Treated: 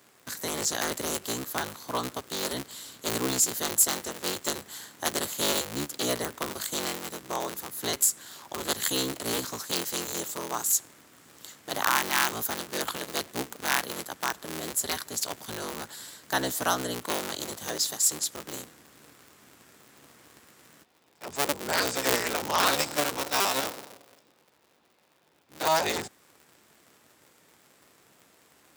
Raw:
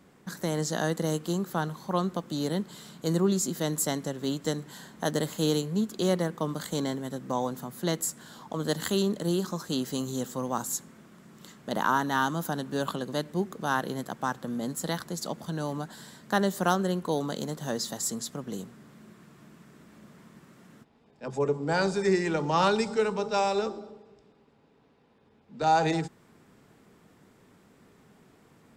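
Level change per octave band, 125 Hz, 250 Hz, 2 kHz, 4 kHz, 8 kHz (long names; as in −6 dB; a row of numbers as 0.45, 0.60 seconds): −10.5, −7.5, +3.5, +6.0, +8.5 decibels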